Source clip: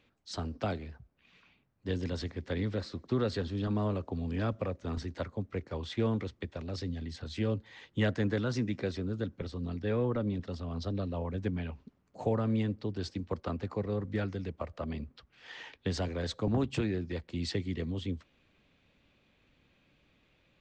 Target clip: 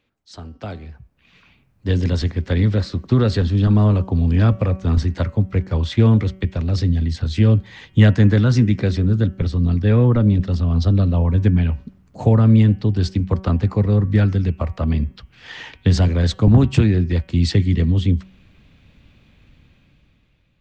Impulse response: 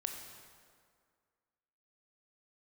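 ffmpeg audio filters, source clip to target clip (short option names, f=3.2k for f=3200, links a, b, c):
-af "dynaudnorm=f=250:g=9:m=13dB,bandreject=f=189.5:t=h:w=4,bandreject=f=379:t=h:w=4,bandreject=f=568.5:t=h:w=4,bandreject=f=758:t=h:w=4,bandreject=f=947.5:t=h:w=4,bandreject=f=1.137k:t=h:w=4,bandreject=f=1.3265k:t=h:w=4,bandreject=f=1.516k:t=h:w=4,bandreject=f=1.7055k:t=h:w=4,bandreject=f=1.895k:t=h:w=4,bandreject=f=2.0845k:t=h:w=4,bandreject=f=2.274k:t=h:w=4,bandreject=f=2.4635k:t=h:w=4,bandreject=f=2.653k:t=h:w=4,bandreject=f=2.8425k:t=h:w=4,bandreject=f=3.032k:t=h:w=4,bandreject=f=3.2215k:t=h:w=4,asubboost=boost=3:cutoff=220,volume=-1dB"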